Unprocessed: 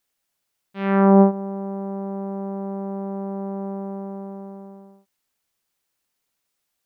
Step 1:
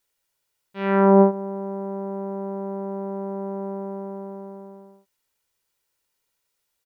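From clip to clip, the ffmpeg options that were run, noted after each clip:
ffmpeg -i in.wav -af "aecho=1:1:2.1:0.4" out.wav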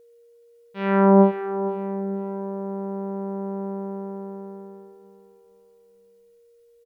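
ffmpeg -i in.wav -af "aecho=1:1:462|924|1386:0.266|0.0878|0.029,aeval=exprs='val(0)+0.00282*sin(2*PI*470*n/s)':channel_layout=same,asubboost=boost=4:cutoff=180" out.wav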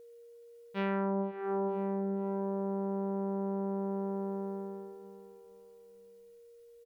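ffmpeg -i in.wav -af "acompressor=threshold=-29dB:ratio=12" out.wav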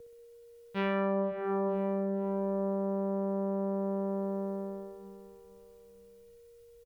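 ffmpeg -i in.wav -filter_complex "[0:a]aecho=1:1:63|126|189|252|315|378|441:0.447|0.241|0.13|0.0703|0.038|0.0205|0.0111,acrossover=split=130|1100[link_01][link_02][link_03];[link_01]aeval=exprs='0.00501*sin(PI/2*2.82*val(0)/0.00501)':channel_layout=same[link_04];[link_04][link_02][link_03]amix=inputs=3:normalize=0,volume=2.5dB" out.wav

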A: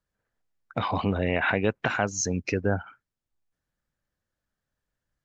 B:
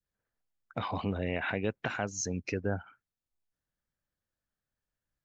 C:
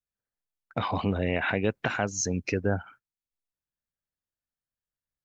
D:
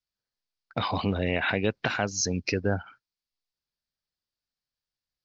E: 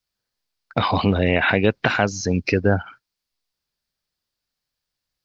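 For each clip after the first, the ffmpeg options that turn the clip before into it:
ffmpeg -i in.wav -af "adynamicequalizer=threshold=0.0126:dfrequency=1100:dqfactor=0.99:tfrequency=1100:tqfactor=0.99:attack=5:release=100:ratio=0.375:range=2.5:mode=cutabove:tftype=bell,volume=-6.5dB" out.wav
ffmpeg -i in.wav -af "agate=range=-14dB:threshold=-56dB:ratio=16:detection=peak,volume=5.5dB" out.wav
ffmpeg -i in.wav -af "lowpass=frequency=4800:width_type=q:width=3.7" out.wav
ffmpeg -i in.wav -filter_complex "[0:a]acrossover=split=3000[link_01][link_02];[link_02]acompressor=threshold=-39dB:ratio=4:attack=1:release=60[link_03];[link_01][link_03]amix=inputs=2:normalize=0,volume=8.5dB" out.wav

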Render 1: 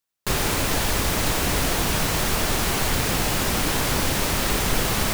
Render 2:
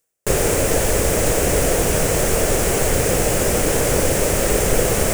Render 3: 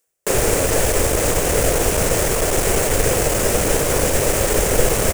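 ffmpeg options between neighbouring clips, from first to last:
ffmpeg -i in.wav -af "equalizer=frequency=250:width_type=o:width=1:gain=-4,equalizer=frequency=500:width_type=o:width=1:gain=11,equalizer=frequency=1000:width_type=o:width=1:gain=-8,equalizer=frequency=4000:width_type=o:width=1:gain=-11,equalizer=frequency=8000:width_type=o:width=1:gain=7,equalizer=frequency=16000:width_type=o:width=1:gain=-4,areverse,acompressor=mode=upward:threshold=-23dB:ratio=2.5,areverse,volume=4.5dB" out.wav
ffmpeg -i in.wav -filter_complex "[0:a]acrossover=split=190[link_01][link_02];[link_01]adelay=70[link_03];[link_03][link_02]amix=inputs=2:normalize=0,aeval=exprs='clip(val(0),-1,0.112)':channel_layout=same,volume=2dB" out.wav

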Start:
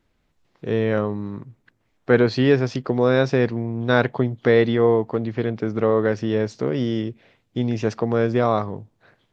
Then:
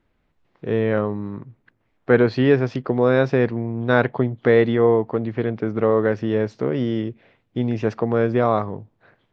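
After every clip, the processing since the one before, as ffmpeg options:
ffmpeg -i in.wav -af "bass=frequency=250:gain=-1,treble=frequency=4000:gain=-13,volume=1dB" out.wav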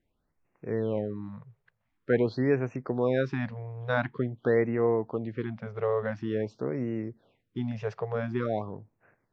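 ffmpeg -i in.wav -af "afftfilt=real='re*(1-between(b*sr/1024,250*pow(4100/250,0.5+0.5*sin(2*PI*0.47*pts/sr))/1.41,250*pow(4100/250,0.5+0.5*sin(2*PI*0.47*pts/sr))*1.41))':imag='im*(1-between(b*sr/1024,250*pow(4100/250,0.5+0.5*sin(2*PI*0.47*pts/sr))/1.41,250*pow(4100/250,0.5+0.5*sin(2*PI*0.47*pts/sr))*1.41))':win_size=1024:overlap=0.75,volume=-9dB" out.wav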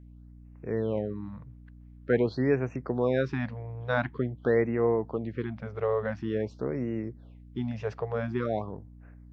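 ffmpeg -i in.wav -af "aeval=exprs='val(0)+0.00398*(sin(2*PI*60*n/s)+sin(2*PI*2*60*n/s)/2+sin(2*PI*3*60*n/s)/3+sin(2*PI*4*60*n/s)/4+sin(2*PI*5*60*n/s)/5)':channel_layout=same" out.wav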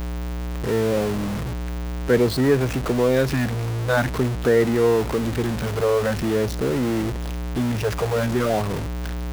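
ffmpeg -i in.wav -af "aeval=exprs='val(0)+0.5*0.0422*sgn(val(0))':channel_layout=same,volume=5dB" out.wav

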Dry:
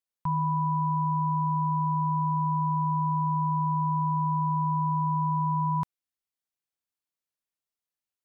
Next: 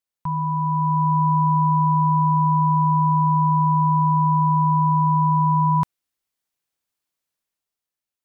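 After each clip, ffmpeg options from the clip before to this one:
ffmpeg -i in.wav -af "dynaudnorm=framelen=150:gausssize=11:maxgain=6dB,volume=2.5dB" out.wav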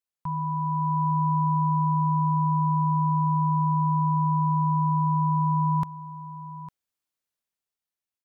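ffmpeg -i in.wav -af "aecho=1:1:854:0.168,volume=-5dB" out.wav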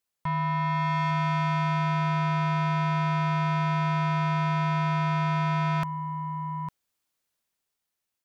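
ffmpeg -i in.wav -af "asoftclip=type=tanh:threshold=-31dB,volume=7dB" out.wav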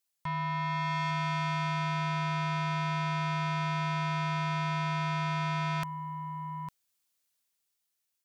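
ffmpeg -i in.wav -af "highshelf=frequency=2400:gain=10,volume=-6.5dB" out.wav

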